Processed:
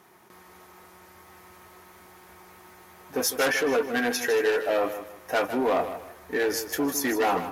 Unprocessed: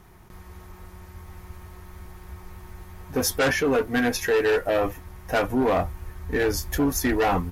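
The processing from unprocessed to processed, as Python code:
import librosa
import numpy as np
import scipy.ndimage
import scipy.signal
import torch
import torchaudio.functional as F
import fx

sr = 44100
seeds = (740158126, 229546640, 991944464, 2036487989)

p1 = scipy.signal.sosfilt(scipy.signal.butter(2, 300.0, 'highpass', fs=sr, output='sos'), x)
p2 = 10.0 ** (-15.5 / 20.0) * np.tanh(p1 / 10.0 ** (-15.5 / 20.0))
y = p2 + fx.echo_feedback(p2, sr, ms=155, feedback_pct=31, wet_db=-11.0, dry=0)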